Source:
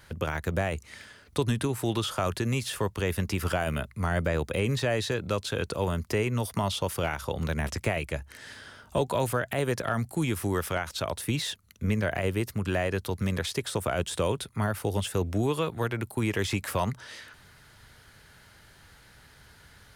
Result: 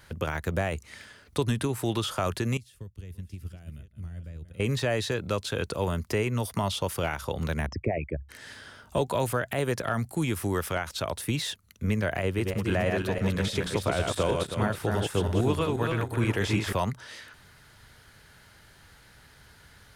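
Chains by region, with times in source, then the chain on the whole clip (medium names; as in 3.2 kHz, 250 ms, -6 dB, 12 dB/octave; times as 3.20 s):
2.57–4.60 s: chunks repeated in reverse 437 ms, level -11.5 dB + amplifier tone stack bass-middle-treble 10-0-1 + transient shaper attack +5 dB, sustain -1 dB
7.66–8.29 s: resonances exaggerated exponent 3 + low-pass 4 kHz
12.22–16.73 s: backward echo that repeats 161 ms, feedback 49%, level -3 dB + treble shelf 8.9 kHz -8.5 dB
whole clip: none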